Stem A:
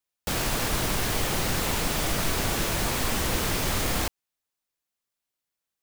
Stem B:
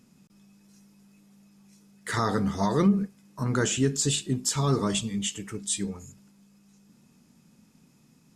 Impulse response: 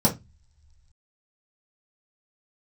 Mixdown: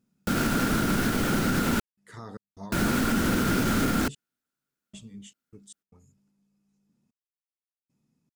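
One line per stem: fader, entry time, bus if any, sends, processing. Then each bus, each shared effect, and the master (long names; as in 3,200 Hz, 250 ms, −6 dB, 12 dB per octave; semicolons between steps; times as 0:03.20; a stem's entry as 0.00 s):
−4.0 dB, 0.00 s, muted 0:01.80–0:02.72, no send, hollow resonant body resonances 230/1,400 Hz, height 17 dB, ringing for 25 ms; brickwall limiter −11 dBFS, peak gain reduction 4.5 dB
−16.5 dB, 0.00 s, no send, tilt shelving filter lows +3.5 dB, about 750 Hz; gate pattern "xxxxxx....xx.x." 76 BPM −60 dB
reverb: not used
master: no processing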